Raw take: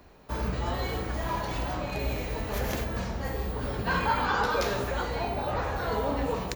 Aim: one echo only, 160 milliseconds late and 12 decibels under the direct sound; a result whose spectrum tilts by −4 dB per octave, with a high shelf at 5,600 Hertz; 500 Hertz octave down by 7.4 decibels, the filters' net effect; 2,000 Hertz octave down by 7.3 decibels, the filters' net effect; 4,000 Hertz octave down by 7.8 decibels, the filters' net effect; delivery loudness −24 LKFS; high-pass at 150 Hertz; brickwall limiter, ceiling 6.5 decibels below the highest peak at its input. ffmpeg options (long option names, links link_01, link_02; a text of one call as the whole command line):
ffmpeg -i in.wav -af "highpass=150,equalizer=frequency=500:width_type=o:gain=-8.5,equalizer=frequency=2000:width_type=o:gain=-8.5,equalizer=frequency=4000:width_type=o:gain=-9,highshelf=frequency=5600:gain=5,alimiter=level_in=1dB:limit=-24dB:level=0:latency=1,volume=-1dB,aecho=1:1:160:0.251,volume=11dB" out.wav